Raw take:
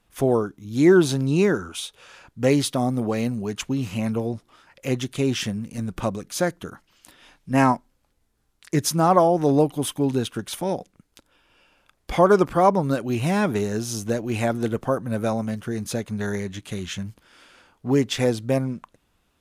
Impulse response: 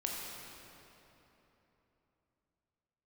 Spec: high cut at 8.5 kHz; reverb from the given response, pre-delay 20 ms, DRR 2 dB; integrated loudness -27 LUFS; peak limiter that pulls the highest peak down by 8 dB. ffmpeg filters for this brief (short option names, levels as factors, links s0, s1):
-filter_complex "[0:a]lowpass=8500,alimiter=limit=0.237:level=0:latency=1,asplit=2[s0][s1];[1:a]atrim=start_sample=2205,adelay=20[s2];[s1][s2]afir=irnorm=-1:irlink=0,volume=0.562[s3];[s0][s3]amix=inputs=2:normalize=0,volume=0.668"